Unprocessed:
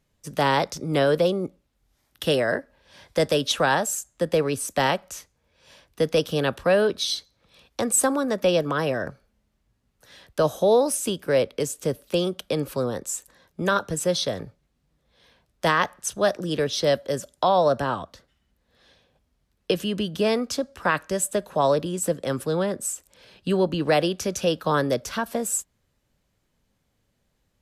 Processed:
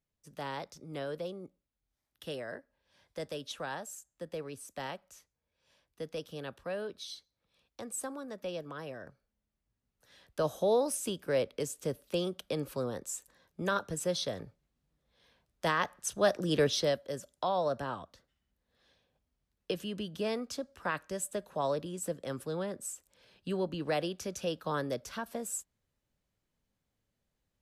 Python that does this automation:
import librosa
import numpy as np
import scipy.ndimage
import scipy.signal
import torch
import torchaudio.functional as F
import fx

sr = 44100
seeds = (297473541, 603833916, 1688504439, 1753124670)

y = fx.gain(x, sr, db=fx.line((9.05, -18.0), (10.56, -9.0), (15.78, -9.0), (16.68, -2.0), (16.98, -11.5)))